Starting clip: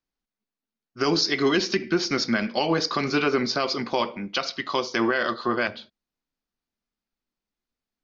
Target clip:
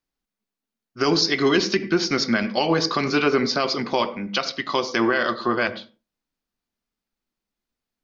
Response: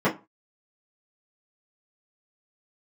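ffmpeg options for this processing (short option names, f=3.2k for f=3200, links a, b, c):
-filter_complex "[0:a]asplit=2[a][b];[1:a]atrim=start_sample=2205,adelay=82[c];[b][c]afir=irnorm=-1:irlink=0,volume=-33dB[d];[a][d]amix=inputs=2:normalize=0,volume=2.5dB"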